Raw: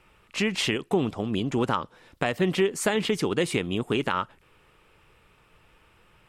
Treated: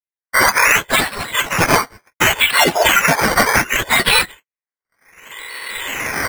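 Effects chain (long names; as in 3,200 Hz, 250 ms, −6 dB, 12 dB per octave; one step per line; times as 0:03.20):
frequency axis turned over on the octave scale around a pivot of 2,000 Hz
camcorder AGC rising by 13 dB per second
low-pass that shuts in the quiet parts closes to 1,700 Hz, open at −26 dBFS
noise gate −51 dBFS, range −58 dB
high-pass filter 900 Hz 12 dB per octave
comb filter 2 ms, depth 68%
sample-and-hold swept by an LFO 13×, swing 60% 0.67 Hz
formants moved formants +5 semitones
boost into a limiter +19.5 dB
level −1 dB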